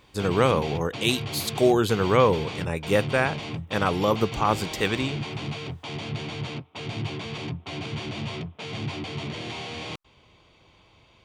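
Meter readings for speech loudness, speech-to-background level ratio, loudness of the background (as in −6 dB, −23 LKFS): −24.5 LKFS, 9.0 dB, −33.5 LKFS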